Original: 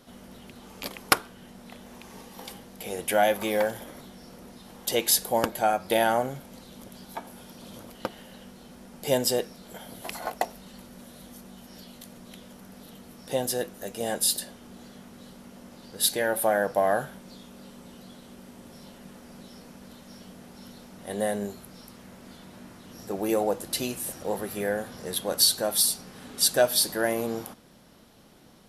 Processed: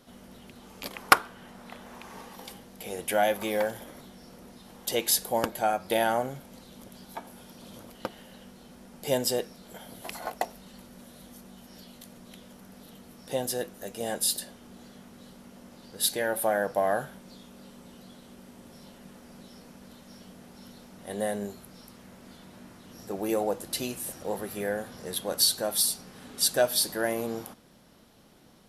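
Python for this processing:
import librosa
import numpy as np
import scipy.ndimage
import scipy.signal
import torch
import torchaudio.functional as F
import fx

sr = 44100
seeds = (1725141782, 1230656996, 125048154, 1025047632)

y = fx.peak_eq(x, sr, hz=1200.0, db=8.0, octaves=2.0, at=(0.93, 2.36))
y = F.gain(torch.from_numpy(y), -2.5).numpy()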